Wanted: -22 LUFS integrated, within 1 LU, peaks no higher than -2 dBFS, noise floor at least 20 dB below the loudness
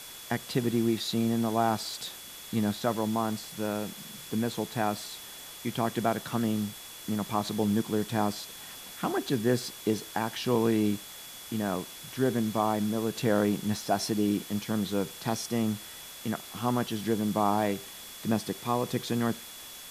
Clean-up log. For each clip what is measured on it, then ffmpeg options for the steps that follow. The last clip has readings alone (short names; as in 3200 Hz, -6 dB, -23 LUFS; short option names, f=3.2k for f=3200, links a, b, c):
steady tone 3400 Hz; tone level -49 dBFS; noise floor -45 dBFS; noise floor target -50 dBFS; loudness -30.0 LUFS; peak -12.5 dBFS; loudness target -22.0 LUFS
-> -af "bandreject=f=3.4k:w=30"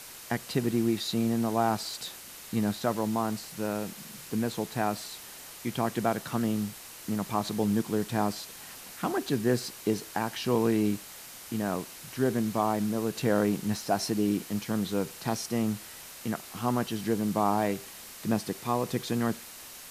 steady tone none; noise floor -46 dBFS; noise floor target -50 dBFS
-> -af "afftdn=nr=6:nf=-46"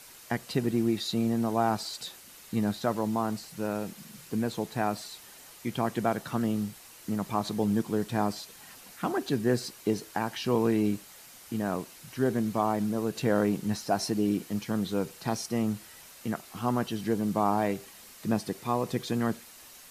noise floor -51 dBFS; loudness -30.5 LUFS; peak -12.5 dBFS; loudness target -22.0 LUFS
-> -af "volume=8.5dB"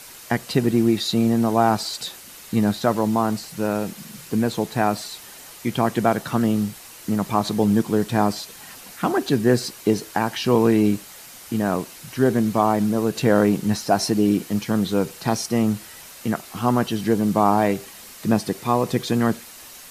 loudness -22.0 LUFS; peak -4.0 dBFS; noise floor -42 dBFS